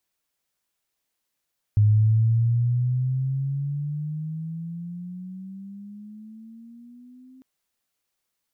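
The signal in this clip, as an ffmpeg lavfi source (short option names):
-f lavfi -i "aevalsrc='pow(10,(-13.5-32.5*t/5.65)/20)*sin(2*PI*104*5.65/(16*log(2)/12)*(exp(16*log(2)/12*t/5.65)-1))':d=5.65:s=44100"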